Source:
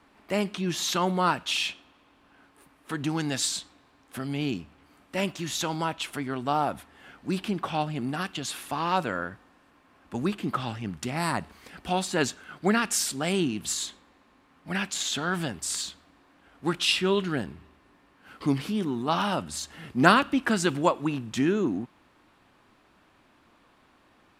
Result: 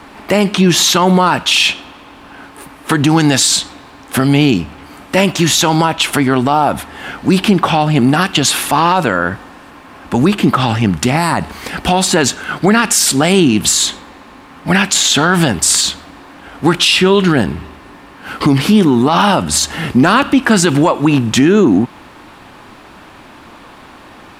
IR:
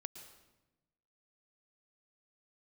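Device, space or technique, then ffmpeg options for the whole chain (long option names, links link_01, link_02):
mastering chain: -af "equalizer=frequency=860:width_type=o:width=0.26:gain=3,acompressor=threshold=-33dB:ratio=1.5,asoftclip=type=tanh:threshold=-14dB,alimiter=level_in=24dB:limit=-1dB:release=50:level=0:latency=1,volume=-1dB"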